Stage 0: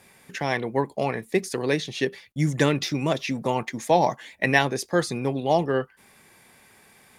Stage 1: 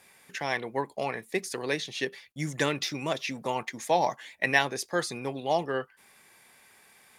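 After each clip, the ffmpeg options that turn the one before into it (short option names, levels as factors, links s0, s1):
-af "lowshelf=f=430:g=-10,volume=0.794"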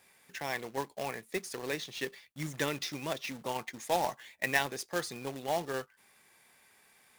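-af "acrusher=bits=2:mode=log:mix=0:aa=0.000001,volume=0.501"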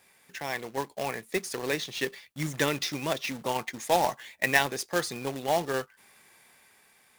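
-af "dynaudnorm=f=210:g=9:m=1.58,volume=1.26"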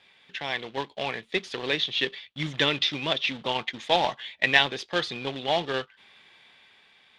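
-af "lowpass=f=3400:t=q:w=4.2"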